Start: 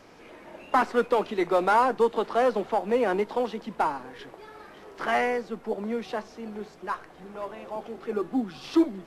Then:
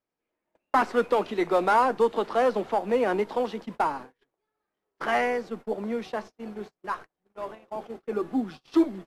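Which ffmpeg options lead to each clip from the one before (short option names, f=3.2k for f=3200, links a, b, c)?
-af "agate=range=-37dB:threshold=-38dB:ratio=16:detection=peak"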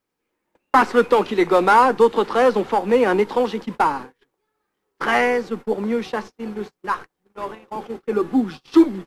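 -af "equalizer=f=650:w=7.8:g=-13,volume=8.5dB"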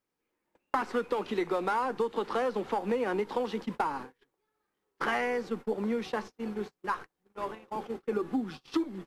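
-af "acompressor=threshold=-20dB:ratio=10,volume=-6dB"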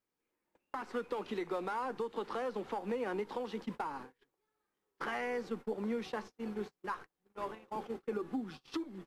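-af "alimiter=limit=-23dB:level=0:latency=1:release=424,volume=-4dB"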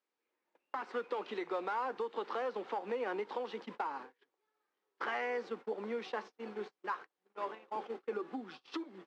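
-af "highpass=370,lowpass=4.6k,volume=1.5dB"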